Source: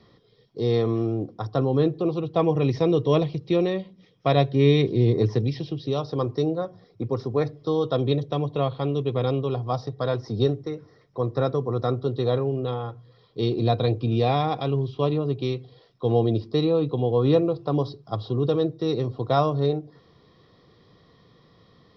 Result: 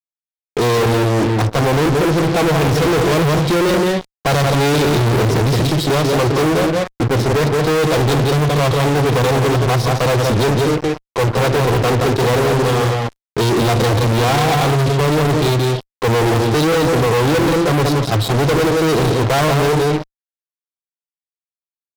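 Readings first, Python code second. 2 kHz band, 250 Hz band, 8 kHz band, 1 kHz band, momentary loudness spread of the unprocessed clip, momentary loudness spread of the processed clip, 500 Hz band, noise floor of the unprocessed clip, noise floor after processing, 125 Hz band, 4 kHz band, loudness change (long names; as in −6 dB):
+20.5 dB, +8.0 dB, can't be measured, +12.0 dB, 9 LU, 4 LU, +8.0 dB, −58 dBFS, below −85 dBFS, +9.5 dB, +14.0 dB, +9.0 dB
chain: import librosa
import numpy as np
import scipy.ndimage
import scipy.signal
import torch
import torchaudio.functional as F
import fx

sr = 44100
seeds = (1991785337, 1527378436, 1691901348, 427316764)

y = fx.echo_multitap(x, sr, ms=(174, 229), db=(-7.5, -19.5))
y = fx.fuzz(y, sr, gain_db=42.0, gate_db=-42.0)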